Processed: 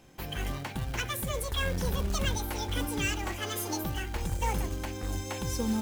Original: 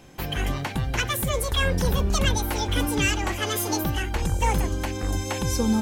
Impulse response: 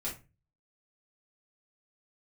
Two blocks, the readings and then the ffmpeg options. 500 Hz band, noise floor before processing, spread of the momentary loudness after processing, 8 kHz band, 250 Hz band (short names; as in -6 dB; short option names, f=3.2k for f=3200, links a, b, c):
-7.5 dB, -31 dBFS, 5 LU, -7.0 dB, -7.5 dB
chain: -af "bandreject=f=143.9:t=h:w=4,bandreject=f=287.8:t=h:w=4,bandreject=f=431.7:t=h:w=4,bandreject=f=575.6:t=h:w=4,bandreject=f=719.5:t=h:w=4,bandreject=f=863.4:t=h:w=4,bandreject=f=1.0073k:t=h:w=4,bandreject=f=1.1512k:t=h:w=4,bandreject=f=1.2951k:t=h:w=4,bandreject=f=1.439k:t=h:w=4,bandreject=f=1.5829k:t=h:w=4,bandreject=f=1.7268k:t=h:w=4,bandreject=f=1.8707k:t=h:w=4,bandreject=f=2.0146k:t=h:w=4,bandreject=f=2.1585k:t=h:w=4,bandreject=f=2.3024k:t=h:w=4,bandreject=f=2.4463k:t=h:w=4,bandreject=f=2.5902k:t=h:w=4,bandreject=f=2.7341k:t=h:w=4,bandreject=f=2.878k:t=h:w=4,bandreject=f=3.0219k:t=h:w=4,bandreject=f=3.1658k:t=h:w=4,bandreject=f=3.3097k:t=h:w=4,bandreject=f=3.4536k:t=h:w=4,bandreject=f=3.5975k:t=h:w=4,bandreject=f=3.7414k:t=h:w=4,bandreject=f=3.8853k:t=h:w=4,bandreject=f=4.0292k:t=h:w=4,bandreject=f=4.1731k:t=h:w=4,acrusher=bits=4:mode=log:mix=0:aa=0.000001,volume=-7.5dB"